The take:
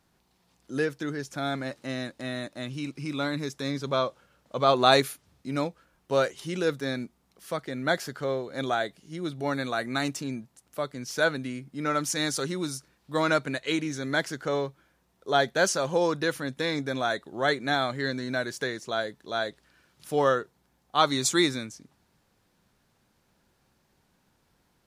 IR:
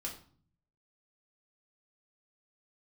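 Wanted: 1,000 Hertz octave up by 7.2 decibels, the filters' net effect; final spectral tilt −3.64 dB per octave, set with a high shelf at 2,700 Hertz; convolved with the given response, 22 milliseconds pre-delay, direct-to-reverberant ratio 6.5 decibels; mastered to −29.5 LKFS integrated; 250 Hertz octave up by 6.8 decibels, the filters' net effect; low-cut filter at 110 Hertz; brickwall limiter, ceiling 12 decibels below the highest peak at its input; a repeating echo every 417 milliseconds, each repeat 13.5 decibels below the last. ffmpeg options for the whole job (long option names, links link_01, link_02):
-filter_complex "[0:a]highpass=110,equalizer=frequency=250:width_type=o:gain=8,equalizer=frequency=1000:width_type=o:gain=8.5,highshelf=frequency=2700:gain=7.5,alimiter=limit=-11dB:level=0:latency=1,aecho=1:1:417|834:0.211|0.0444,asplit=2[link_01][link_02];[1:a]atrim=start_sample=2205,adelay=22[link_03];[link_02][link_03]afir=irnorm=-1:irlink=0,volume=-6dB[link_04];[link_01][link_04]amix=inputs=2:normalize=0,volume=-5.5dB"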